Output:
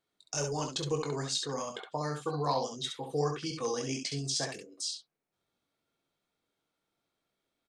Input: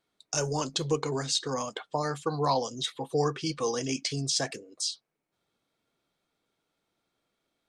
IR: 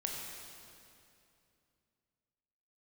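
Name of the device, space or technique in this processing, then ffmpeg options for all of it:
slapback doubling: -filter_complex "[0:a]asplit=3[s0][s1][s2];[s1]adelay=21,volume=0.398[s3];[s2]adelay=67,volume=0.531[s4];[s0][s3][s4]amix=inputs=3:normalize=0,volume=0.531"

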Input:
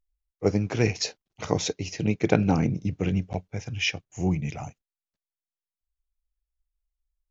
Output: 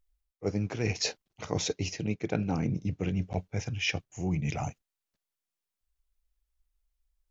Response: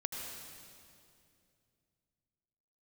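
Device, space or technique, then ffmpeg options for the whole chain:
compression on the reversed sound: -af "areverse,acompressor=threshold=0.0224:ratio=4,areverse,volume=1.68"

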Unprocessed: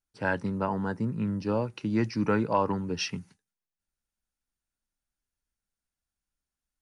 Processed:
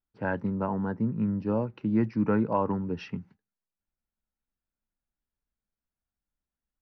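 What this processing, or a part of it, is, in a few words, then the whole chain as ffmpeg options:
phone in a pocket: -af "lowpass=3000,equalizer=f=220:t=o:w=0.33:g=3.5,highshelf=f=2000:g=-11"

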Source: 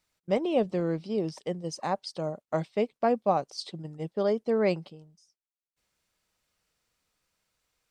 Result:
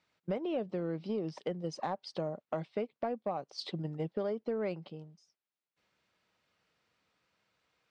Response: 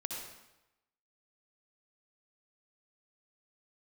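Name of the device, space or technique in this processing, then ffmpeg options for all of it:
AM radio: -af "highpass=110,lowpass=3600,acompressor=threshold=0.0178:ratio=8,asoftclip=type=tanh:threshold=0.0501,volume=1.58"

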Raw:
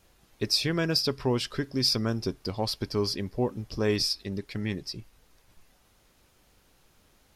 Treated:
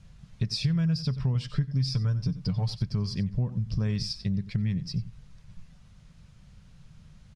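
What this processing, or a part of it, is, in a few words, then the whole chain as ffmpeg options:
jukebox: -filter_complex "[0:a]lowpass=f=11000:w=0.5412,lowpass=f=11000:w=1.3066,asettb=1/sr,asplit=3[s0][s1][s2];[s0]atrim=end=1.344[s3];[s1]atrim=start=1.34:end=2.77,asetpts=PTS-STARTPTS,afade=t=in:d=0.004:c=qsin,afade=t=out:st=1.426:d=0.004:c=qsin,aecho=1:1:6.7:0.65,atrim=end_sample=63063[s4];[s2]atrim=start=2.766[s5];[s3][s4]acrossfade=d=0.004:c1=hsin:c2=qsin[s6];[s6][s5]acrossfade=d=0.004:c1=qsin:c2=hsin,lowpass=7500,lowshelf=f=230:t=q:w=3:g=12.5,equalizer=f=810:t=o:w=0.27:g=-4.5,aecho=1:1:91:0.141,acompressor=threshold=0.0501:ratio=4"

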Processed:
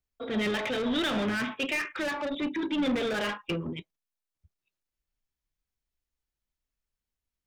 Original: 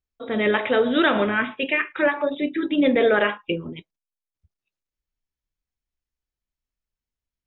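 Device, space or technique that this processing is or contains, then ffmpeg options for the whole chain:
one-band saturation: -filter_complex "[0:a]acrossover=split=200|3200[s0][s1][s2];[s1]asoftclip=type=tanh:threshold=0.0299[s3];[s0][s3][s2]amix=inputs=3:normalize=0"

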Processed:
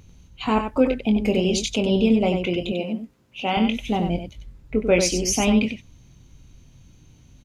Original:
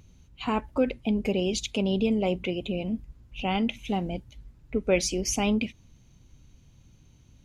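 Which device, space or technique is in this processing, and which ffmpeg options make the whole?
slapback doubling: -filter_complex "[0:a]asplit=3[s0][s1][s2];[s1]adelay=23,volume=0.398[s3];[s2]adelay=94,volume=0.473[s4];[s0][s3][s4]amix=inputs=3:normalize=0,asettb=1/sr,asplit=3[s5][s6][s7];[s5]atrim=end=2.724[s8];[s6]atrim=start=2.72:end=3.57,asetpts=PTS-STARTPTS,afade=t=in:d=0.004:c=qsin,afade=t=out:st=0.846:d=0.004:c=qsin,highpass=240[s9];[s7]atrim=start=3.566[s10];[s8][s9]acrossfade=d=0.004:c1=hsin:c2=qsin[s11];[s11][s10]acrossfade=d=0.004:c1=qsin:c2=hsin,volume=1.68"

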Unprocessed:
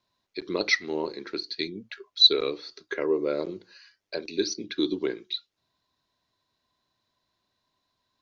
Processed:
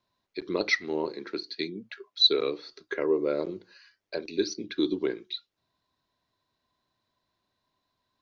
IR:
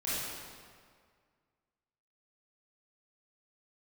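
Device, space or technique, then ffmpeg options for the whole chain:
behind a face mask: -filter_complex "[0:a]asettb=1/sr,asplit=3[s0][s1][s2];[s0]atrim=end=1.074[s3];[s1]atrim=start=1.07:end=2.64,asetpts=PTS-STARTPTS,afade=t=in:d=0.004:c=qsin,afade=t=out:st=1.566:d=0.004:c=qsin,highpass=f=120:w=0.5412,highpass=f=120:w=1.3066[s4];[s2]atrim=start=2.636[s5];[s3][s4]acrossfade=d=0.004:c1=hsin:c2=qsin[s6];[s6][s5]acrossfade=d=0.004:c1=qsin:c2=hsin,highshelf=f=3400:g=-6.5"

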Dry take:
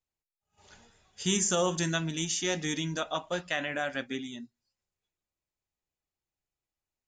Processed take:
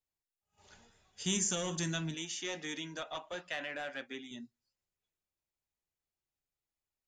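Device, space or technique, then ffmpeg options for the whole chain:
one-band saturation: -filter_complex "[0:a]asettb=1/sr,asplit=3[s0][s1][s2];[s0]atrim=end=2.144[s3];[s1]atrim=start=2.14:end=4.31,asetpts=PTS-STARTPTS,afade=t=in:d=0.004:c=qsin,afade=t=out:st=2.166:d=0.004:c=qsin,bass=f=250:g=-14,treble=f=4000:g=-7[s4];[s2]atrim=start=4.306[s5];[s3][s4]acrossfade=d=0.004:c1=hsin:c2=qsin[s6];[s6][s5]acrossfade=d=0.004:c1=qsin:c2=hsin,acrossover=split=220|2100[s7][s8][s9];[s8]asoftclip=type=tanh:threshold=0.0224[s10];[s7][s10][s9]amix=inputs=3:normalize=0,volume=0.631"

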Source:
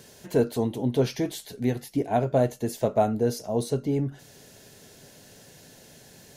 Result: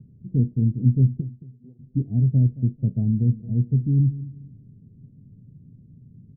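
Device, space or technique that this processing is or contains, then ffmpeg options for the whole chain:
the neighbour's flat through the wall: -filter_complex "[0:a]lowpass=f=220:w=0.5412,lowpass=f=220:w=1.3066,equalizer=f=120:t=o:w=0.73:g=6.5,asplit=3[s0][s1][s2];[s0]afade=t=out:st=1.2:d=0.02[s3];[s1]highpass=990,afade=t=in:st=1.2:d=0.02,afade=t=out:st=1.79:d=0.02[s4];[s2]afade=t=in:st=1.79:d=0.02[s5];[s3][s4][s5]amix=inputs=3:normalize=0,asplit=2[s6][s7];[s7]adelay=222,lowpass=f=2000:p=1,volume=0.158,asplit=2[s8][s9];[s9]adelay=222,lowpass=f=2000:p=1,volume=0.31,asplit=2[s10][s11];[s11]adelay=222,lowpass=f=2000:p=1,volume=0.31[s12];[s6][s8][s10][s12]amix=inputs=4:normalize=0,volume=2.11"

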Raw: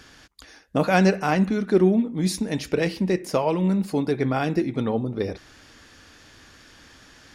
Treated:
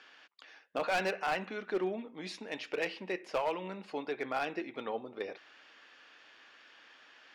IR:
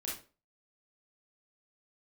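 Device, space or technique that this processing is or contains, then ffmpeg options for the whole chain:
megaphone: -af "highpass=570,lowpass=3200,equalizer=f=2800:t=o:w=0.55:g=5.5,asoftclip=type=hard:threshold=0.106,volume=0.501"

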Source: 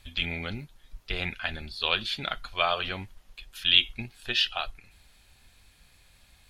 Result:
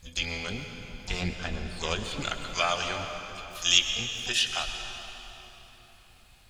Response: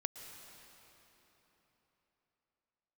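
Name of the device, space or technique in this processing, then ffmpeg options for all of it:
shimmer-style reverb: -filter_complex "[0:a]asettb=1/sr,asplit=3[s0][s1][s2];[s0]atrim=end=1.224[s3];[s1]atrim=start=1.22:end=2.21,asetpts=PTS-STARTPTS,afade=t=in:d=0.004:c=qsin,afade=t=out:st=0.986:d=0.004:c=qsin,tiltshelf=f=760:g=7[s4];[s2]atrim=start=2.206[s5];[s3][s4]acrossfade=d=0.004:c1=hsin:c2=qsin[s6];[s6][s5]acrossfade=d=0.004:c1=qsin:c2=hsin,asplit=2[s7][s8];[s8]asetrate=88200,aresample=44100,atempo=0.5,volume=0.447[s9];[s7][s9]amix=inputs=2:normalize=0[s10];[1:a]atrim=start_sample=2205[s11];[s10][s11]afir=irnorm=-1:irlink=0"

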